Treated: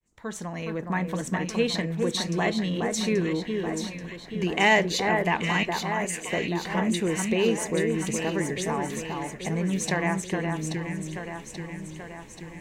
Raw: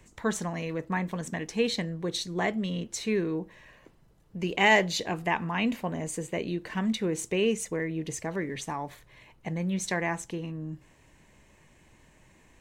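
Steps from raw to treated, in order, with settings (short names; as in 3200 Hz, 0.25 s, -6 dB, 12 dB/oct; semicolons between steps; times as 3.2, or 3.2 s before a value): opening faded in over 1.04 s; 5.63–6.29 HPF 1400 Hz 12 dB/oct; in parallel at +1 dB: compressor, threshold -38 dBFS, peak gain reduction 20 dB; on the sum: echo with dull and thin repeats by turns 0.416 s, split 1900 Hz, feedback 75%, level -4 dB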